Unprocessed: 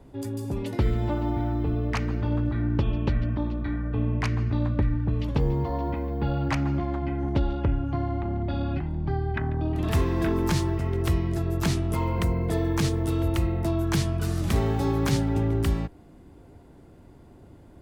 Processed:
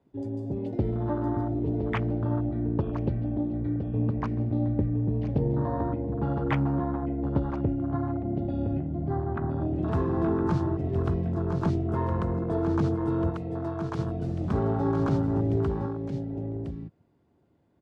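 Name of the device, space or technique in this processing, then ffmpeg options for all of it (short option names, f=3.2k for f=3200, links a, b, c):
over-cleaned archive recording: -filter_complex "[0:a]asettb=1/sr,asplit=3[a][b][c];[a]atrim=end=13.294[d];[b]atrim=start=13.29:end=13.99,asetpts=PTS-STARTPTS,afade=t=in:d=0.004:c=qsin,afade=t=out:st=0.696:d=0.004:c=qsin,highpass=f=600:p=1[e];[c]atrim=start=13.986[f];[d][e]acrossfade=d=0.004:c1=hsin:c2=qsin[g];[g][f]acrossfade=d=0.004:c1=qsin:c2=hsin,highpass=100,lowpass=5.9k,highshelf=f=8.8k:g=-3,aecho=1:1:1013:0.447,afwtdn=0.0282"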